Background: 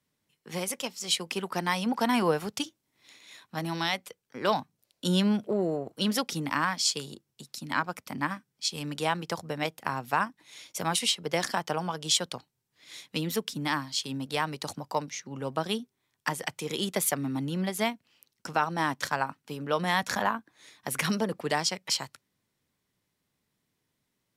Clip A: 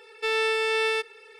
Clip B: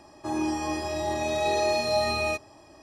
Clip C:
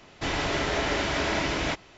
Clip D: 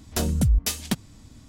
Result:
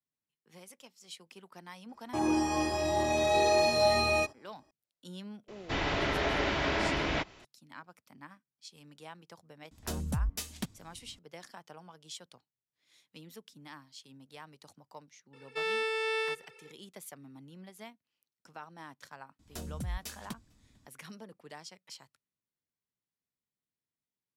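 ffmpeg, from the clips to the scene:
ffmpeg -i bed.wav -i cue0.wav -i cue1.wav -i cue2.wav -i cue3.wav -filter_complex "[4:a]asplit=2[link_01][link_02];[0:a]volume=-20dB[link_03];[2:a]agate=range=-16dB:threshold=-48dB:ratio=16:release=100:detection=peak[link_04];[3:a]acrossover=split=5100[link_05][link_06];[link_06]acompressor=threshold=-59dB:ratio=4:attack=1:release=60[link_07];[link_05][link_07]amix=inputs=2:normalize=0[link_08];[1:a]highshelf=frequency=5400:gain=-3.5[link_09];[link_02]asplit=2[link_10][link_11];[link_11]adelay=449,volume=-27dB,highshelf=frequency=4000:gain=-10.1[link_12];[link_10][link_12]amix=inputs=2:normalize=0[link_13];[link_04]atrim=end=2.82,asetpts=PTS-STARTPTS,volume=-0.5dB,afade=type=in:duration=0.004:curve=hsin,afade=type=out:start_time=2.816:duration=0.004:curve=hsin,adelay=1890[link_14];[link_08]atrim=end=1.97,asetpts=PTS-STARTPTS,volume=-3dB,afade=type=in:duration=0.004:curve=hsin,afade=type=out:start_time=1.966:duration=0.004:curve=hsin,adelay=5480[link_15];[link_01]atrim=end=1.48,asetpts=PTS-STARTPTS,volume=-11.5dB,afade=type=in:duration=0.004:curve=hsin,afade=type=out:start_time=1.476:duration=0.004:curve=hsin,adelay=9710[link_16];[link_09]atrim=end=1.39,asetpts=PTS-STARTPTS,volume=-7dB,afade=type=in:duration=0.004:curve=hsin,afade=type=out:start_time=1.386:duration=0.004:curve=hsin,adelay=15330[link_17];[link_13]atrim=end=1.48,asetpts=PTS-STARTPTS,volume=-17dB,afade=type=in:duration=0.004:curve=hsin,afade=type=out:start_time=1.476:duration=0.004:curve=hsin,adelay=19390[link_18];[link_03][link_14][link_15][link_16][link_17][link_18]amix=inputs=6:normalize=0" out.wav

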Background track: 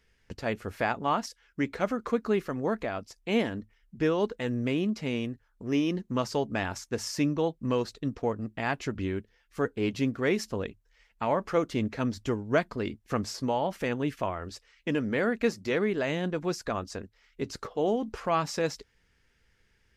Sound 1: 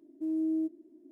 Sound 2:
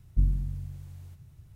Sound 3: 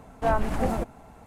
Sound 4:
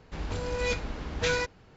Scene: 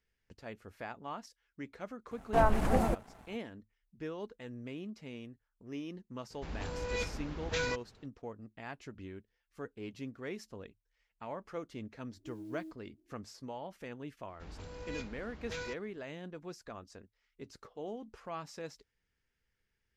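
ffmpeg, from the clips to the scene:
ffmpeg -i bed.wav -i cue0.wav -i cue1.wav -i cue2.wav -i cue3.wav -filter_complex "[4:a]asplit=2[link_01][link_02];[0:a]volume=-15dB[link_03];[3:a]aeval=exprs='sgn(val(0))*max(abs(val(0))-0.00237,0)':channel_layout=same[link_04];[1:a]acrusher=bits=7:mode=log:mix=0:aa=0.000001[link_05];[link_04]atrim=end=1.26,asetpts=PTS-STARTPTS,volume=-2dB,afade=type=in:duration=0.004:curve=hsin,afade=type=out:start_time=1.256:duration=0.004:curve=hsin,adelay=2110[link_06];[link_01]atrim=end=1.76,asetpts=PTS-STARTPTS,volume=-6.5dB,afade=type=in:duration=0.004:curve=hsin,afade=type=out:start_time=1.756:duration=0.004:curve=hsin,adelay=6300[link_07];[link_05]atrim=end=1.11,asetpts=PTS-STARTPTS,volume=-16dB,afade=type=in:duration=0.004:curve=hsin,afade=type=out:start_time=1.106:duration=0.004:curve=hsin,adelay=12040[link_08];[link_02]atrim=end=1.76,asetpts=PTS-STARTPTS,volume=-14dB,afade=type=in:duration=0.004:curve=hsin,afade=type=out:start_time=1.756:duration=0.004:curve=hsin,adelay=629748S[link_09];[link_03][link_06][link_07][link_08][link_09]amix=inputs=5:normalize=0" out.wav

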